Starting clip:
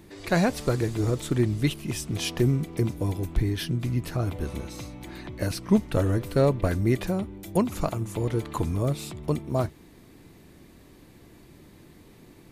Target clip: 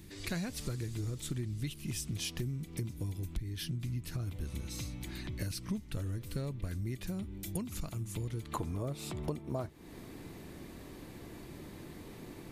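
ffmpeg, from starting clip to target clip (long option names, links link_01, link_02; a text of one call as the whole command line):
ffmpeg -i in.wav -af "asetnsamples=nb_out_samples=441:pad=0,asendcmd='8.53 equalizer g 2',equalizer=frequency=690:width=0.48:gain=-14,acompressor=threshold=-37dB:ratio=6,volume=2.5dB" out.wav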